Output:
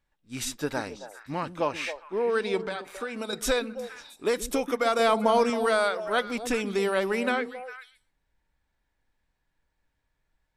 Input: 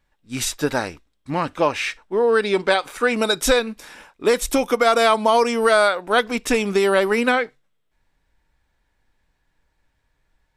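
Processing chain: 2.61–3.33 s: compression 6:1, threshold -22 dBFS, peak gain reduction 9.5 dB; 4.99–5.50 s: bass shelf 490 Hz +7.5 dB; repeats whose band climbs or falls 135 ms, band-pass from 230 Hz, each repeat 1.4 oct, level -6 dB; trim -8.5 dB

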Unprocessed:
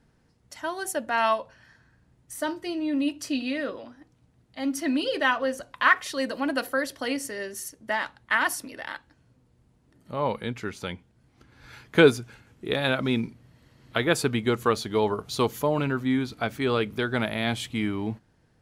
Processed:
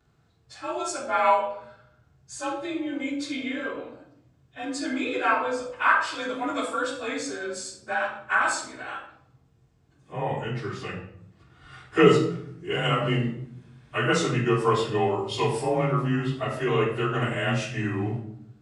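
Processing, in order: frequency axis rescaled in octaves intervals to 92%; high-pass 53 Hz; peaking EQ 250 Hz -9.5 dB 0.66 oct; reverberation RT60 0.70 s, pre-delay 3 ms, DRR -1.5 dB

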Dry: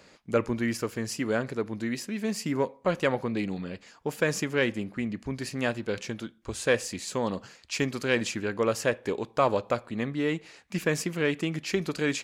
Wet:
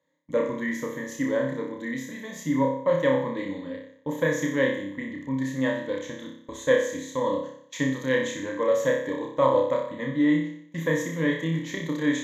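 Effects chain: high-pass 110 Hz; treble shelf 3.8 kHz -10.5 dB; gate -42 dBFS, range -21 dB; rippled EQ curve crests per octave 1.1, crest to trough 18 dB; on a send: flutter echo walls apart 5.2 m, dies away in 0.62 s; on the sum: trim -4 dB

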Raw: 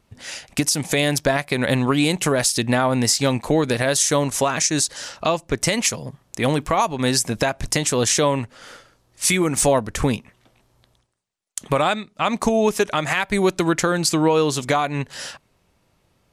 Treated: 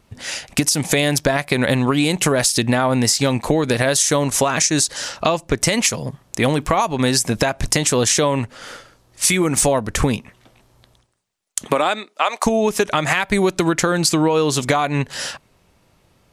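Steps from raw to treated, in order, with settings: 11.66–12.45 s: high-pass 160 Hz -> 600 Hz 24 dB/octave; compression, threshold -19 dBFS, peak gain reduction 6.5 dB; trim +6 dB

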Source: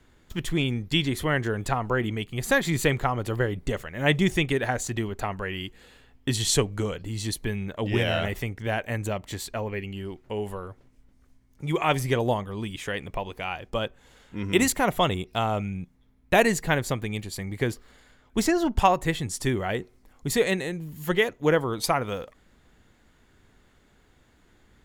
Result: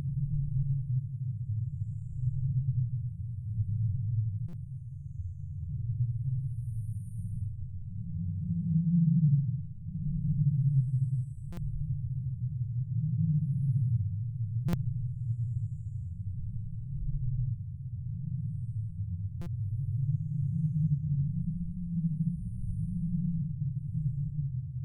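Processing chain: LFO low-pass square 1 Hz 250–2700 Hz; FFT band-reject 180–8600 Hz; dynamic bell 300 Hz, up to +3 dB, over -44 dBFS, Q 1.2; on a send: echo that smears into a reverb 504 ms, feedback 47%, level -13.5 dB; on the sum: ever faster or slower copies 197 ms, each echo -2 st, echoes 3, each echo -6 dB; in parallel at 0 dB: compression, threshold -34 dBFS, peak gain reduction 16.5 dB; on the sum: Paulstretch 8.4×, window 0.10 s, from 1.64 s; buffer glitch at 4.48/11.52/14.68/19.41 s, samples 256, times 8; trim -6.5 dB

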